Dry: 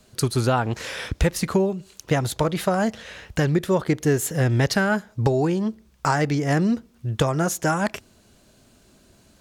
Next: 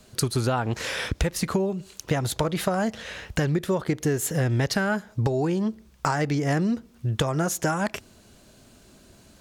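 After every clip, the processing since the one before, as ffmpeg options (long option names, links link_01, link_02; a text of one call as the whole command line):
ffmpeg -i in.wav -af "acompressor=threshold=-25dB:ratio=3,volume=2.5dB" out.wav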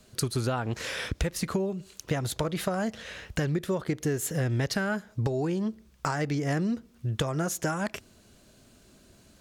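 ffmpeg -i in.wav -af "equalizer=frequency=860:width_type=o:width=0.5:gain=-3,volume=-4dB" out.wav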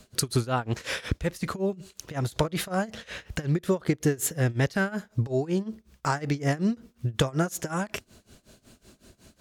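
ffmpeg -i in.wav -af "tremolo=f=5.4:d=0.91,volume=5.5dB" out.wav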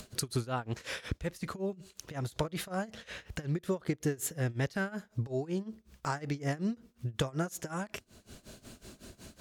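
ffmpeg -i in.wav -af "acompressor=mode=upward:threshold=-31dB:ratio=2.5,volume=-7.5dB" out.wav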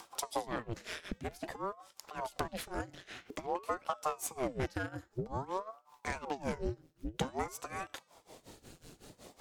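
ffmpeg -i in.wav -af "bandreject=frequency=347.2:width_type=h:width=4,bandreject=frequency=694.4:width_type=h:width=4,bandreject=frequency=1041.6:width_type=h:width=4,bandreject=frequency=1388.8:width_type=h:width=4,bandreject=frequency=1736:width_type=h:width=4,bandreject=frequency=2083.2:width_type=h:width=4,bandreject=frequency=2430.4:width_type=h:width=4,bandreject=frequency=2777.6:width_type=h:width=4,bandreject=frequency=3124.8:width_type=h:width=4,bandreject=frequency=3472:width_type=h:width=4,bandreject=frequency=3819.2:width_type=h:width=4,bandreject=frequency=4166.4:width_type=h:width=4,bandreject=frequency=4513.6:width_type=h:width=4,bandreject=frequency=4860.8:width_type=h:width=4,bandreject=frequency=5208:width_type=h:width=4,bandreject=frequency=5555.2:width_type=h:width=4,bandreject=frequency=5902.4:width_type=h:width=4,bandreject=frequency=6249.6:width_type=h:width=4,bandreject=frequency=6596.8:width_type=h:width=4,bandreject=frequency=6944:width_type=h:width=4,bandreject=frequency=7291.2:width_type=h:width=4,bandreject=frequency=7638.4:width_type=h:width=4,bandreject=frequency=7985.6:width_type=h:width=4,bandreject=frequency=8332.8:width_type=h:width=4,bandreject=frequency=8680:width_type=h:width=4,aeval=exprs='0.141*(cos(1*acos(clip(val(0)/0.141,-1,1)))-cos(1*PI/2))+0.0355*(cos(2*acos(clip(val(0)/0.141,-1,1)))-cos(2*PI/2))+0.0251*(cos(4*acos(clip(val(0)/0.141,-1,1)))-cos(4*PI/2))':channel_layout=same,aeval=exprs='val(0)*sin(2*PI*520*n/s+520*0.85/0.51*sin(2*PI*0.51*n/s))':channel_layout=same,volume=-1dB" out.wav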